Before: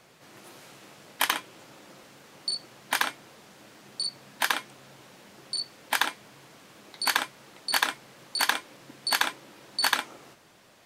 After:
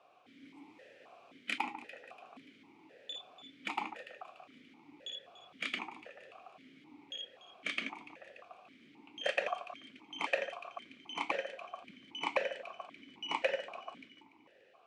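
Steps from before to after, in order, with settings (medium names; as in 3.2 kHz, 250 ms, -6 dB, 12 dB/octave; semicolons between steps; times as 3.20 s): gliding tape speed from 82% -> 64%; echo whose repeats swap between lows and highs 145 ms, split 1.8 kHz, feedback 63%, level -10.5 dB; stepped vowel filter 3.8 Hz; trim +4 dB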